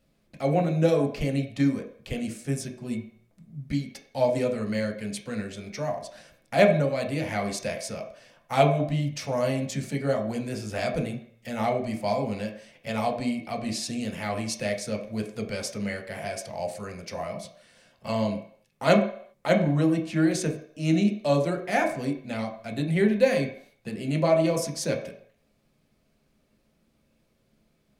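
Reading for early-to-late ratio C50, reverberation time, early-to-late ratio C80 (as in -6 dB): 8.5 dB, 0.60 s, 12.0 dB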